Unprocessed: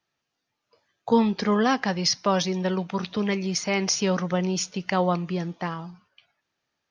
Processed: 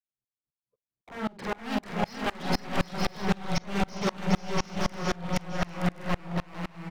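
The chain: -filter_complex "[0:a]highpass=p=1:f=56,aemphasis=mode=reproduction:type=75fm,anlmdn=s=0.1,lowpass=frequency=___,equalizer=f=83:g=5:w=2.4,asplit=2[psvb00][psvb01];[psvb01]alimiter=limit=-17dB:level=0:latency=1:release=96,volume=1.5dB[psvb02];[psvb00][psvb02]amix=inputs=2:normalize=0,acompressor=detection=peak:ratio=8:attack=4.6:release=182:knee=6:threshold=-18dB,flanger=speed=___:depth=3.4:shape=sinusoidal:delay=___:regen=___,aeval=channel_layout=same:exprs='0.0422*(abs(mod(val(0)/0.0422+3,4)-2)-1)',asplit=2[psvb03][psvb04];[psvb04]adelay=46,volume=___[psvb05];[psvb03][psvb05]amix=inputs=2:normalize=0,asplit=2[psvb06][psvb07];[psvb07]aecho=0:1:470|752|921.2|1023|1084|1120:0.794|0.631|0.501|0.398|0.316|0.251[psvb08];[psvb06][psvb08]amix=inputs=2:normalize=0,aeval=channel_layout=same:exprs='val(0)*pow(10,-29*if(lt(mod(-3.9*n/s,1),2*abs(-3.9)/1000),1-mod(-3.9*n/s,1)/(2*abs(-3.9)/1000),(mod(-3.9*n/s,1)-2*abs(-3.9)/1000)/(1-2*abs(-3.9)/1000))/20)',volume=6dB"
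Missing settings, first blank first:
3.9k, 1.1, 4.3, -68, -6dB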